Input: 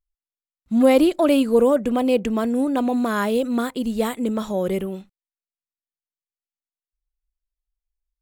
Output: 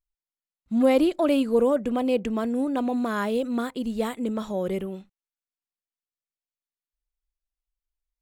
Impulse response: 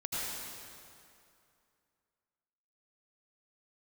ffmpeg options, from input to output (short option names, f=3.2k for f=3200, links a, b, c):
-af "highshelf=f=8.9k:g=-7,volume=-4.5dB"